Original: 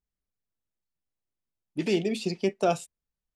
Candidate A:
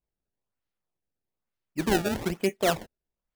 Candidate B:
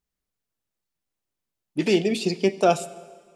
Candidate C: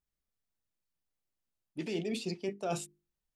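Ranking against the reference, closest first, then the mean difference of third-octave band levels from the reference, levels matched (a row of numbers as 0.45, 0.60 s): B, C, A; 2.5, 3.5, 9.0 dB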